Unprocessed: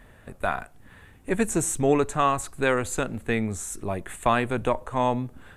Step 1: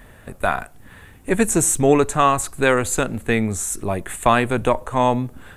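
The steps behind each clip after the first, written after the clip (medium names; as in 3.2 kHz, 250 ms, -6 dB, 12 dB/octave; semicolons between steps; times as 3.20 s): treble shelf 8.2 kHz +6.5 dB; trim +6 dB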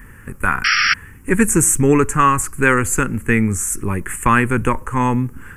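painted sound noise, 0.64–0.94 s, 1.2–5.7 kHz -16 dBFS; static phaser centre 1.6 kHz, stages 4; trim +6 dB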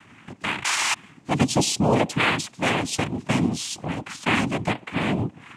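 noise-vocoded speech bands 4; dynamic bell 1.5 kHz, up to -6 dB, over -31 dBFS, Q 1.6; trim -5.5 dB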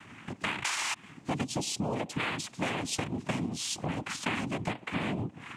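compression 10:1, threshold -29 dBFS, peak gain reduction 15 dB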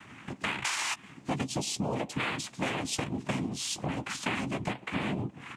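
doubling 15 ms -11 dB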